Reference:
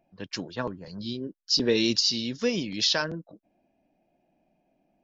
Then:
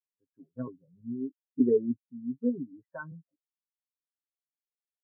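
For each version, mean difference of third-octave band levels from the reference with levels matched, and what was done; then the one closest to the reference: 14.5 dB: comb 7.4 ms, depth 70%; level rider gain up to 12 dB; inverse Chebyshev low-pass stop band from 4 kHz, stop band 50 dB; spectral contrast expander 2.5:1; trim -8 dB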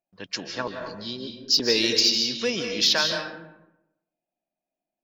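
8.0 dB: gate with hold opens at -57 dBFS; bass shelf 400 Hz -10.5 dB; in parallel at -8.5 dB: hard clipper -21 dBFS, distortion -13 dB; on the sum: algorithmic reverb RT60 0.86 s, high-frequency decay 0.6×, pre-delay 115 ms, DRR 3.5 dB; trim +1.5 dB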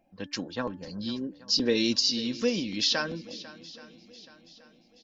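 3.5 dB: comb 3.8 ms, depth 39%; de-hum 290.3 Hz, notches 6; in parallel at -2.5 dB: compression, threshold -35 dBFS, peak gain reduction 16 dB; on the sum: shuffle delay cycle 827 ms, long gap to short 1.5:1, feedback 40%, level -18 dB; trim -3.5 dB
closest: third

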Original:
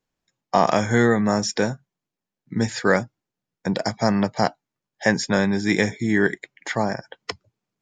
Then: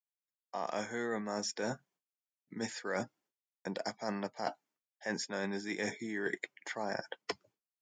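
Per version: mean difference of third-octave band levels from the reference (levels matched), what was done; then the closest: 4.5 dB: expander -53 dBFS; high-pass 280 Hz 12 dB/octave; band-stop 3.9 kHz, Q 16; reverse; compression 8:1, threshold -34 dBFS, peak gain reduction 21 dB; reverse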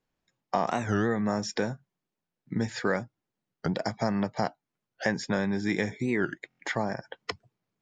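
2.5 dB: treble shelf 6.6 kHz -11 dB; compression 2:1, threshold -30 dBFS, peak gain reduction 10 dB; buffer glitch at 6.48 s, samples 1024, times 4; warped record 45 rpm, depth 250 cents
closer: second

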